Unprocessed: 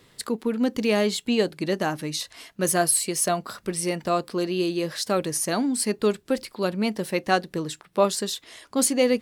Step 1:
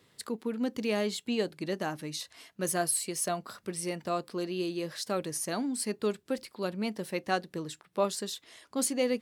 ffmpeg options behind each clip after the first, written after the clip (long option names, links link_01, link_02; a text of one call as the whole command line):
ffmpeg -i in.wav -af "highpass=67,volume=-8dB" out.wav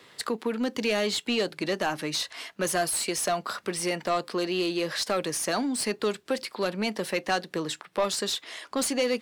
ffmpeg -i in.wav -filter_complex "[0:a]acrossover=split=170|3000[link_01][link_02][link_03];[link_02]acompressor=threshold=-36dB:ratio=2[link_04];[link_01][link_04][link_03]amix=inputs=3:normalize=0,asplit=2[link_05][link_06];[link_06]highpass=frequency=720:poles=1,volume=19dB,asoftclip=type=tanh:threshold=-16dB[link_07];[link_05][link_07]amix=inputs=2:normalize=0,lowpass=frequency=3500:poles=1,volume=-6dB,volume=2dB" out.wav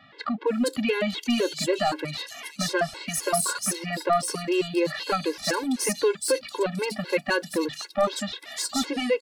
ffmpeg -i in.wav -filter_complex "[0:a]acrossover=split=3600[link_01][link_02];[link_02]adelay=470[link_03];[link_01][link_03]amix=inputs=2:normalize=0,afftfilt=real='re*gt(sin(2*PI*3.9*pts/sr)*(1-2*mod(floor(b*sr/1024/280),2)),0)':imag='im*gt(sin(2*PI*3.9*pts/sr)*(1-2*mod(floor(b*sr/1024/280),2)),0)':win_size=1024:overlap=0.75,volume=6dB" out.wav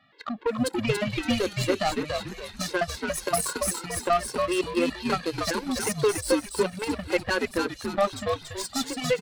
ffmpeg -i in.wav -filter_complex "[0:a]aeval=exprs='0.266*(cos(1*acos(clip(val(0)/0.266,-1,1)))-cos(1*PI/2))+0.0299*(cos(3*acos(clip(val(0)/0.266,-1,1)))-cos(3*PI/2))+0.0133*(cos(7*acos(clip(val(0)/0.266,-1,1)))-cos(7*PI/2))':channel_layout=same,asplit=5[link_01][link_02][link_03][link_04][link_05];[link_02]adelay=284,afreqshift=-110,volume=-4dB[link_06];[link_03]adelay=568,afreqshift=-220,volume=-13.9dB[link_07];[link_04]adelay=852,afreqshift=-330,volume=-23.8dB[link_08];[link_05]adelay=1136,afreqshift=-440,volume=-33.7dB[link_09];[link_01][link_06][link_07][link_08][link_09]amix=inputs=5:normalize=0,volume=1dB" out.wav